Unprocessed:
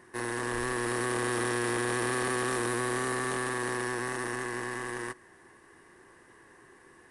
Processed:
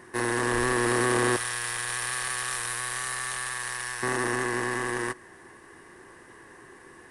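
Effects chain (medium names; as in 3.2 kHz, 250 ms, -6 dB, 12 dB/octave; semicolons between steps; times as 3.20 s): 1.36–4.03 s: amplifier tone stack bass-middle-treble 10-0-10; trim +6.5 dB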